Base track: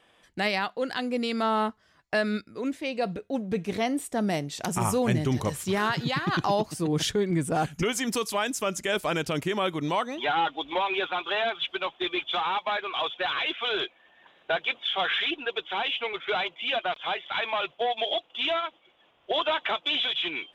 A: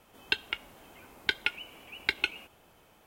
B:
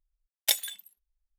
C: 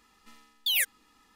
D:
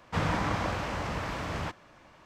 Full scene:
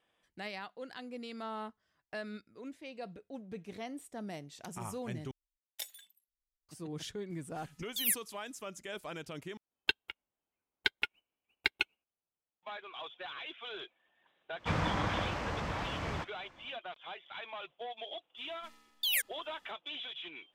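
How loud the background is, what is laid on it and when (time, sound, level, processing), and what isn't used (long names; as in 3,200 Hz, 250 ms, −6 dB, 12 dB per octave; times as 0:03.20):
base track −15.5 dB
0:05.31: overwrite with B −17.5 dB
0:07.30: mix in C −14.5 dB + parametric band 11,000 Hz +13.5 dB 1.7 octaves
0:09.57: overwrite with A −2 dB + expander for the loud parts 2.5 to 1, over −50 dBFS
0:14.53: mix in D −3.5 dB, fades 0.10 s + high-shelf EQ 11,000 Hz −7.5 dB
0:18.37: mix in C −5 dB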